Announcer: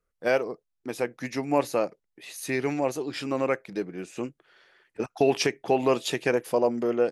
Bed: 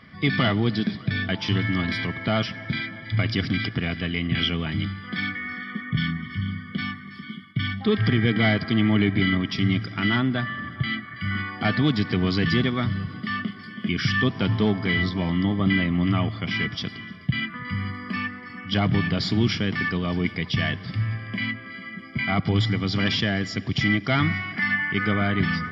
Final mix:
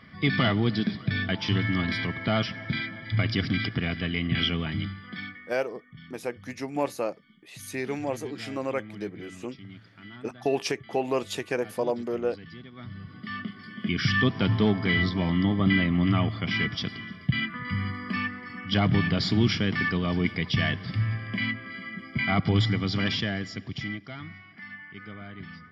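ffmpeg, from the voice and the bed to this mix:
ffmpeg -i stem1.wav -i stem2.wav -filter_complex "[0:a]adelay=5250,volume=-4dB[link_01];[1:a]volume=20dB,afade=type=out:start_time=4.58:duration=0.98:silence=0.0891251,afade=type=in:start_time=12.71:duration=1.42:silence=0.0794328,afade=type=out:start_time=22.58:duration=1.57:silence=0.125893[link_02];[link_01][link_02]amix=inputs=2:normalize=0" out.wav

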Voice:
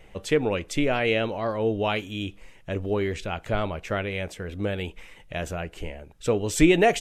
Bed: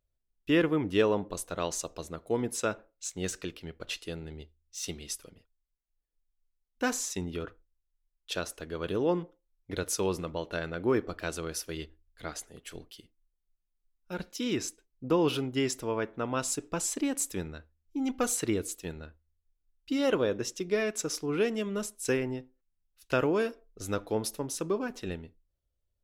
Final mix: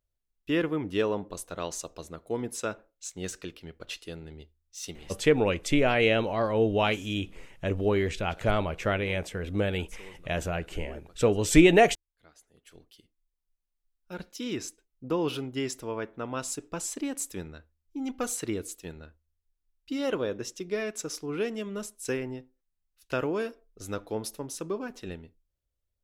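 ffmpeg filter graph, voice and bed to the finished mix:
ffmpeg -i stem1.wav -i stem2.wav -filter_complex "[0:a]adelay=4950,volume=0.5dB[link_01];[1:a]volume=15.5dB,afade=type=out:start_time=4.85:duration=0.46:silence=0.125893,afade=type=in:start_time=12.34:duration=1.16:silence=0.133352[link_02];[link_01][link_02]amix=inputs=2:normalize=0" out.wav

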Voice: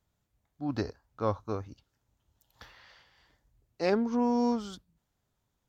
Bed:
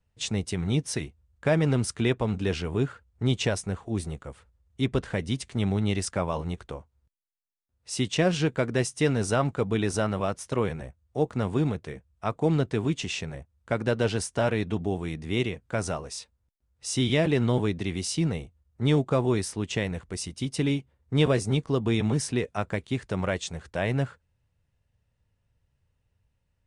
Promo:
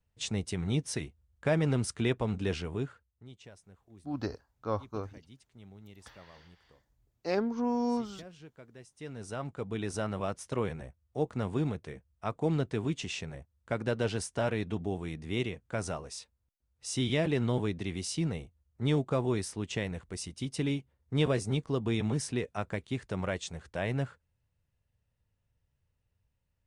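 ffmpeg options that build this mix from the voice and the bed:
ffmpeg -i stem1.wav -i stem2.wav -filter_complex "[0:a]adelay=3450,volume=-3dB[link_01];[1:a]volume=16dB,afade=type=out:start_time=2.53:duration=0.72:silence=0.0841395,afade=type=in:start_time=8.89:duration=1.43:silence=0.0944061[link_02];[link_01][link_02]amix=inputs=2:normalize=0" out.wav

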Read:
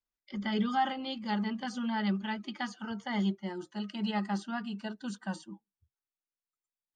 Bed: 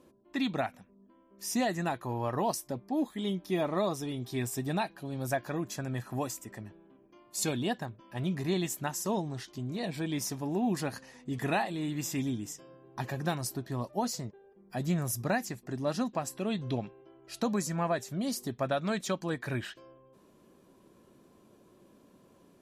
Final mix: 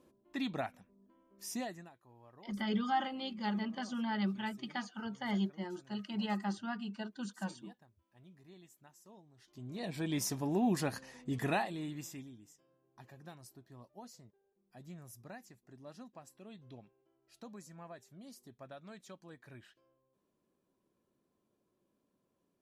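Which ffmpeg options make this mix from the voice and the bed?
ffmpeg -i stem1.wav -i stem2.wav -filter_complex "[0:a]adelay=2150,volume=-3.5dB[link_01];[1:a]volume=20dB,afade=type=out:start_time=1.4:duration=0.5:silence=0.0891251,afade=type=in:start_time=9.37:duration=0.84:silence=0.0501187,afade=type=out:start_time=11.27:duration=1.02:silence=0.112202[link_02];[link_01][link_02]amix=inputs=2:normalize=0" out.wav

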